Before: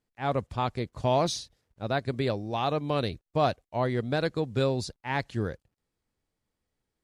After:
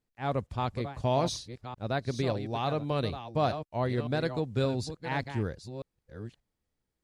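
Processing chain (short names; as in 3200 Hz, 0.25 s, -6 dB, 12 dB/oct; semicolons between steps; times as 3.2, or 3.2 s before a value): reverse delay 0.582 s, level -10 dB; low shelf 200 Hz +4 dB; gain -3.5 dB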